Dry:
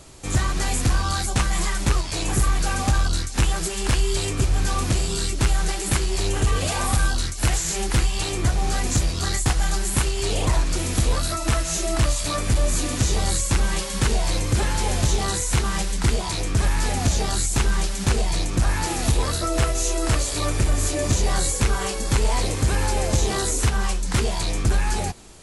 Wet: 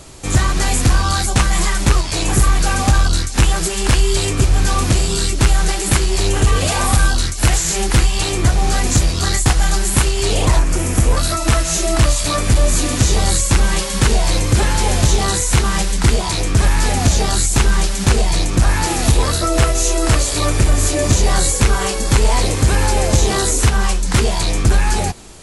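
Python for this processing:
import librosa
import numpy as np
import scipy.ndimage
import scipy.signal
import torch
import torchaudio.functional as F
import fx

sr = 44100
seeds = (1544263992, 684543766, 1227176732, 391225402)

y = fx.peak_eq(x, sr, hz=4000.0, db=-10.5, octaves=0.8, at=(10.59, 11.17))
y = y * 10.0 ** (7.0 / 20.0)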